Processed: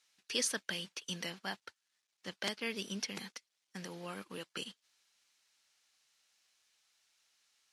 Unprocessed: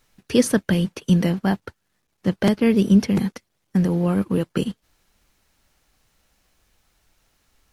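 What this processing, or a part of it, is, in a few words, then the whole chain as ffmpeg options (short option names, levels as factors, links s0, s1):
piezo pickup straight into a mixer: -af "lowpass=5200,aderivative,volume=1.33"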